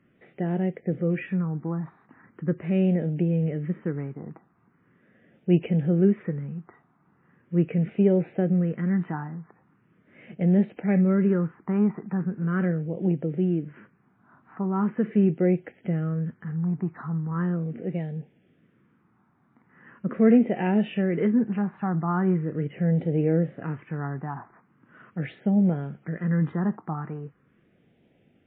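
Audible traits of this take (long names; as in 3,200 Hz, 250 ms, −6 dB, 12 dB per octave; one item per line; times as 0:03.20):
a quantiser's noise floor 12 bits, dither none
phaser sweep stages 4, 0.4 Hz, lowest notch 520–1,100 Hz
MP3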